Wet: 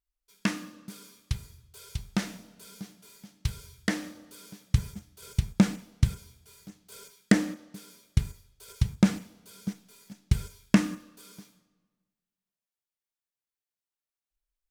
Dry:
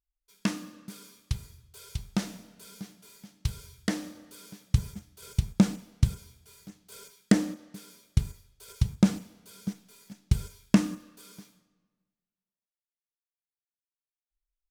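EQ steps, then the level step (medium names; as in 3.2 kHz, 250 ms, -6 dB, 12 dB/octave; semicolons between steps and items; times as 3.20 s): dynamic bell 1.9 kHz, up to +6 dB, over -51 dBFS, Q 1.2; 0.0 dB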